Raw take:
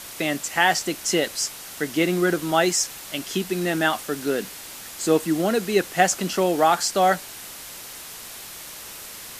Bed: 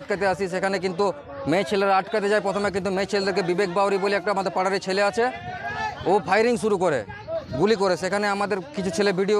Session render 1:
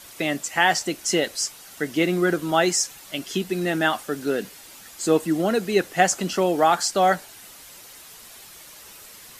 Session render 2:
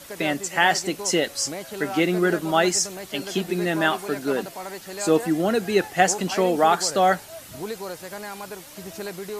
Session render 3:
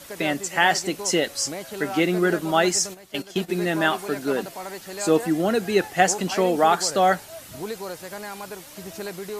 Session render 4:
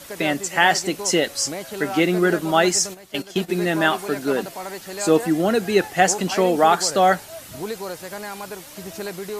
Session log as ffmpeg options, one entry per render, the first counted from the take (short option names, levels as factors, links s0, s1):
-af "afftdn=nr=8:nf=-39"
-filter_complex "[1:a]volume=0.237[s0];[0:a][s0]amix=inputs=2:normalize=0"
-filter_complex "[0:a]asplit=3[s0][s1][s2];[s0]afade=t=out:st=2.93:d=0.02[s3];[s1]agate=range=0.282:threshold=0.0282:ratio=16:release=100:detection=peak,afade=t=in:st=2.93:d=0.02,afade=t=out:st=3.48:d=0.02[s4];[s2]afade=t=in:st=3.48:d=0.02[s5];[s3][s4][s5]amix=inputs=3:normalize=0"
-af "volume=1.33,alimiter=limit=0.794:level=0:latency=1"